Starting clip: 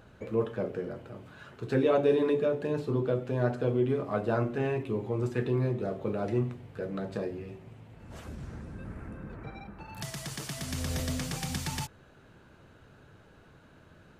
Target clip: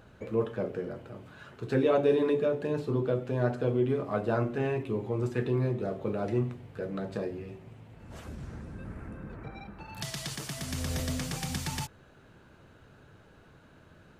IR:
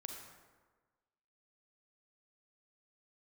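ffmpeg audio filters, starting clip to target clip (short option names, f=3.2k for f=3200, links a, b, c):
-filter_complex "[0:a]asettb=1/sr,asplit=3[a][b][c];[a]atrim=end=9.484[d];[b]atrim=start=9.48:end=10.35,asetpts=PTS-STARTPTS,afade=t=in:d=0.004:c=qsin,afade=t=out:st=0.866:d=0.004:c=qsin,adynamicequalizer=threshold=0.00178:dfrequency=3800:dqfactor=0.99:tfrequency=3800:tqfactor=0.99:attack=5:release=100:ratio=0.375:range=3:mode=boostabove:tftype=bell[e];[c]atrim=start=10.346[f];[d][e]acrossfade=d=0.004:c1=hsin:c2=qsin[g];[g][f]acrossfade=d=0.004:c1=qsin:c2=hsin"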